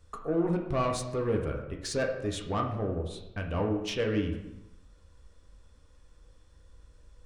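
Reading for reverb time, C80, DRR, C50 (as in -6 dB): 0.95 s, 9.0 dB, 1.5 dB, 6.5 dB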